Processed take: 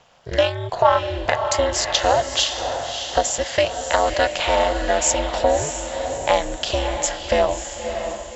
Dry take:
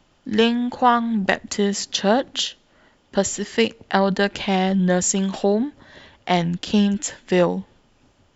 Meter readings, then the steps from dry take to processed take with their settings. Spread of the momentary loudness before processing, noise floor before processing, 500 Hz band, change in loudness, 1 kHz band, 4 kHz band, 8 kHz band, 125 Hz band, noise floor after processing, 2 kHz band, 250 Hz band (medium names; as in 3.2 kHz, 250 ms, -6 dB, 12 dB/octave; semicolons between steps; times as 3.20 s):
7 LU, -60 dBFS, +3.0 dB, 0.0 dB, +2.5 dB, +3.0 dB, no reading, -5.0 dB, -34 dBFS, +1.5 dB, -12.0 dB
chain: ring modulator 140 Hz; compression 3:1, threshold -24 dBFS, peak gain reduction 9 dB; resonant low shelf 460 Hz -7 dB, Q 3; echo that smears into a reverb 611 ms, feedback 45%, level -7 dB; loudness maximiser +9.5 dB; trim -1 dB